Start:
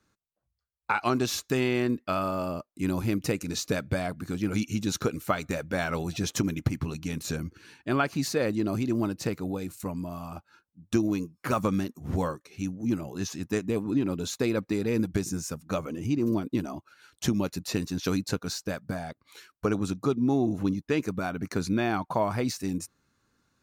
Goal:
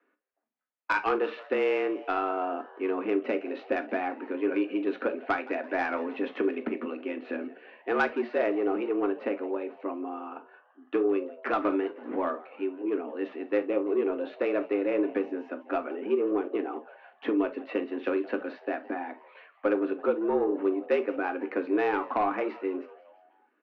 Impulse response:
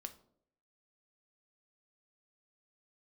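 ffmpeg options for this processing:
-filter_complex "[0:a]highpass=frequency=180:width_type=q:width=0.5412,highpass=frequency=180:width_type=q:width=1.307,lowpass=frequency=2600:width_type=q:width=0.5176,lowpass=frequency=2600:width_type=q:width=0.7071,lowpass=frequency=2600:width_type=q:width=1.932,afreqshift=94,asoftclip=type=tanh:threshold=-18dB,asplit=5[link_01][link_02][link_03][link_04][link_05];[link_02]adelay=168,afreqshift=120,volume=-20.5dB[link_06];[link_03]adelay=336,afreqshift=240,volume=-25.9dB[link_07];[link_04]adelay=504,afreqshift=360,volume=-31.2dB[link_08];[link_05]adelay=672,afreqshift=480,volume=-36.6dB[link_09];[link_01][link_06][link_07][link_08][link_09]amix=inputs=5:normalize=0[link_10];[1:a]atrim=start_sample=2205,atrim=end_sample=3528[link_11];[link_10][link_11]afir=irnorm=-1:irlink=0,volume=6dB"

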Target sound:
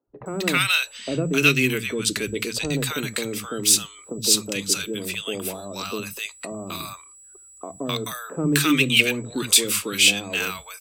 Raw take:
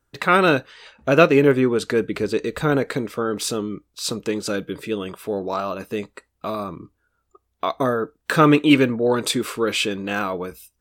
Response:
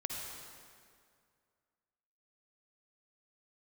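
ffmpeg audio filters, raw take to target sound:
-filter_complex "[0:a]acrossover=split=290|1700[link_01][link_02][link_03];[link_02]acompressor=threshold=-30dB:ratio=6[link_04];[link_01][link_04][link_03]amix=inputs=3:normalize=0,aexciter=amount=1.9:drive=8.4:freq=2300,aeval=exprs='val(0)+0.00501*sin(2*PI*7800*n/s)':channel_layout=same,acrossover=split=190|840[link_05][link_06][link_07];[link_05]adelay=70[link_08];[link_07]adelay=260[link_09];[link_08][link_06][link_09]amix=inputs=3:normalize=0"

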